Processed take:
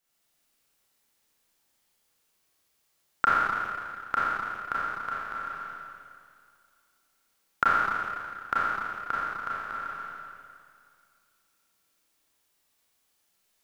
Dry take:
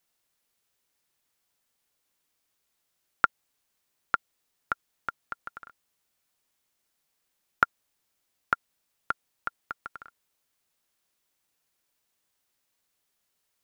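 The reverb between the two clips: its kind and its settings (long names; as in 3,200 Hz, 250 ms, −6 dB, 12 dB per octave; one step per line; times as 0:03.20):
four-comb reverb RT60 2.2 s, combs from 28 ms, DRR −8.5 dB
level −4 dB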